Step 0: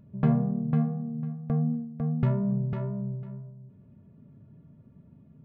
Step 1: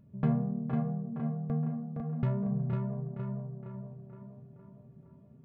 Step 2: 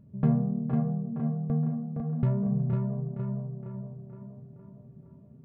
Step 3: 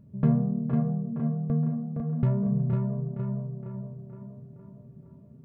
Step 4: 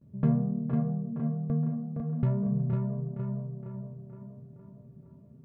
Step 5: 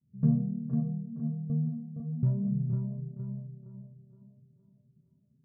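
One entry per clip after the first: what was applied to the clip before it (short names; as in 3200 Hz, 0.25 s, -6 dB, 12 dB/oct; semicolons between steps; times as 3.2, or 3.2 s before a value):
tape echo 0.466 s, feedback 62%, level -3 dB, low-pass 2300 Hz; gain -5 dB
tilt shelf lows +4.5 dB, about 930 Hz
notch 770 Hz, Q 15; gain +1.5 dB
gate with hold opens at -48 dBFS; gain -2.5 dB
spectral expander 1.5:1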